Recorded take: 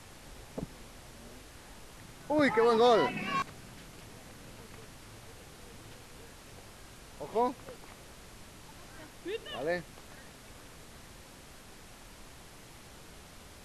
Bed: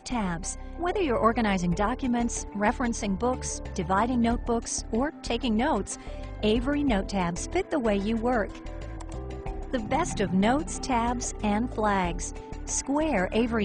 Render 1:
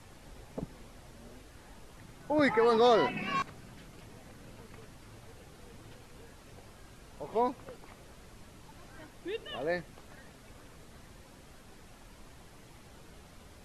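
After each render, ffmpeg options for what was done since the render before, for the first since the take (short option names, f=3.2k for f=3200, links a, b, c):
-af "afftdn=nr=6:nf=-53"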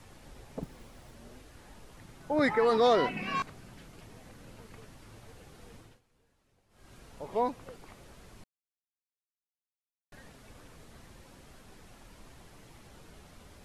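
-filter_complex "[0:a]asettb=1/sr,asplit=3[a][b][c];[a]atrim=end=0.634[d];[b]atrim=start=0.63:end=1.15,asetpts=PTS-STARTPTS,afade=t=in:d=0.004:c=qsin,afade=t=out:st=0.516:d=0.004:c=qsin,acrusher=bits=5:mode=log:mix=0:aa=0.000001[e];[c]atrim=start=1.146[f];[d][e]acrossfade=d=0.004:c1=hsin:c2=qsin[g];[g][f]acrossfade=d=0.004:c1=qsin:c2=hsin,asplit=5[h][i][j][k][l];[h]atrim=end=6.01,asetpts=PTS-STARTPTS,afade=t=out:st=5.75:d=0.26:silence=0.105925[m];[i]atrim=start=6.01:end=6.69,asetpts=PTS-STARTPTS,volume=-19.5dB[n];[j]atrim=start=6.69:end=8.44,asetpts=PTS-STARTPTS,afade=t=in:d=0.26:silence=0.105925,afade=t=out:st=1.746:d=0.004:c=hsin[o];[k]atrim=start=8.44:end=10.12,asetpts=PTS-STARTPTS,volume=0[p];[l]atrim=start=10.12,asetpts=PTS-STARTPTS,afade=t=in:d=0.004:c=hsin[q];[m][n][o][p][q]concat=n=5:v=0:a=1"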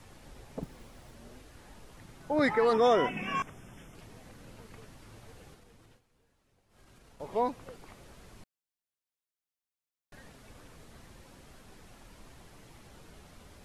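-filter_complex "[0:a]asettb=1/sr,asplit=3[a][b][c];[a]atrim=end=2.734[d];[b]atrim=start=2.73:end=3.95,asetpts=PTS-STARTPTS,afade=t=in:d=0.004:c=qsin,afade=t=out:st=1.216:d=0.004:c=qsin,asuperstop=centerf=4300:order=20:qfactor=3[e];[c]atrim=start=3.946[f];[d][e]acrossfade=d=0.004:c1=hsin:c2=qsin[g];[g][f]acrossfade=d=0.004:c1=qsin:c2=hsin,asettb=1/sr,asplit=3[h][i][j];[h]atrim=end=5.544[k];[i]atrim=start=5.54:end=7.2,asetpts=PTS-STARTPTS,afade=t=in:d=0.004:c=qsin,afade=t=out:st=1.656:d=0.004:c=qsin,acompressor=threshold=-54dB:ratio=6:attack=3.2:release=140:knee=1:detection=peak[l];[j]atrim=start=7.196[m];[k][l]acrossfade=d=0.004:c1=hsin:c2=qsin[n];[n][m]acrossfade=d=0.004:c1=qsin:c2=hsin"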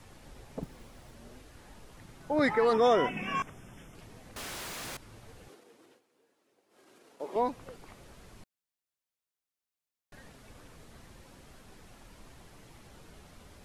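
-filter_complex "[0:a]asettb=1/sr,asplit=3[a][b][c];[a]atrim=end=4.364[d];[b]atrim=start=4.36:end=4.97,asetpts=PTS-STARTPTS,afade=t=in:d=0.004:c=qsin,afade=t=out:st=0.606:d=0.004:c=qsin,aeval=exprs='0.0133*sin(PI/2*10*val(0)/0.0133)':c=same[e];[c]atrim=start=4.966[f];[d][e]acrossfade=d=0.004:c1=hsin:c2=qsin[g];[g][f]acrossfade=d=0.004:c1=qsin:c2=hsin,asettb=1/sr,asplit=3[h][i][j];[h]atrim=end=5.484[k];[i]atrim=start=5.48:end=7.36,asetpts=PTS-STARTPTS,afade=t=in:d=0.004:c=qsin,afade=t=out:st=1.876:d=0.004:c=qsin,highpass=f=340:t=q:w=1.9[l];[j]atrim=start=7.356[m];[k][l]acrossfade=d=0.004:c1=hsin:c2=qsin[n];[n][m]acrossfade=d=0.004:c1=qsin:c2=hsin"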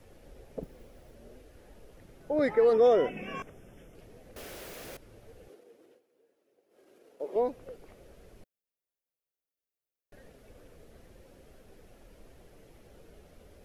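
-af "equalizer=f=125:t=o:w=1:g=-5,equalizer=f=250:t=o:w=1:g=-3,equalizer=f=500:t=o:w=1:g=7,equalizer=f=1k:t=o:w=1:g=-10,equalizer=f=2k:t=o:w=1:g=-3,equalizer=f=4k:t=o:w=1:g=-6,equalizer=f=8k:t=o:w=1:g=-8"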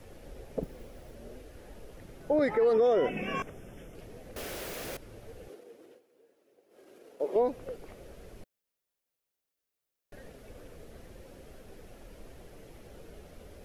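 -af "acontrast=29,alimiter=limit=-18.5dB:level=0:latency=1:release=95"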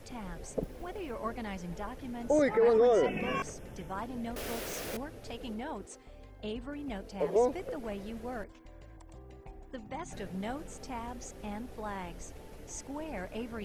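-filter_complex "[1:a]volume=-14.5dB[a];[0:a][a]amix=inputs=2:normalize=0"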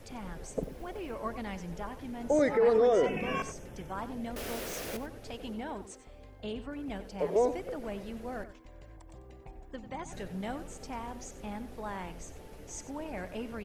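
-filter_complex "[0:a]asplit=2[a][b];[b]adelay=93.29,volume=-13dB,highshelf=f=4k:g=-2.1[c];[a][c]amix=inputs=2:normalize=0"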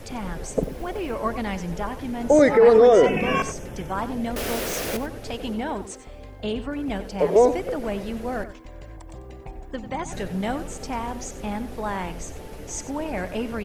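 -af "volume=10.5dB"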